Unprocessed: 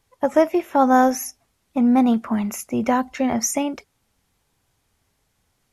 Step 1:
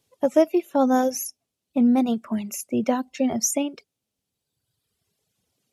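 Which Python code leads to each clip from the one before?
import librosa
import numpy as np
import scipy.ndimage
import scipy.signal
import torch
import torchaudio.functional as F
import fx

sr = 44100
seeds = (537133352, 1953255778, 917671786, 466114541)

y = scipy.signal.sosfilt(scipy.signal.butter(2, 120.0, 'highpass', fs=sr, output='sos'), x)
y = fx.dereverb_blind(y, sr, rt60_s=1.6)
y = fx.band_shelf(y, sr, hz=1300.0, db=-8.5, octaves=1.7)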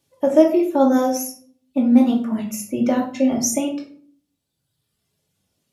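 y = fx.room_shoebox(x, sr, seeds[0], volume_m3=490.0, walls='furnished', distance_m=2.5)
y = y * 10.0 ** (-1.0 / 20.0)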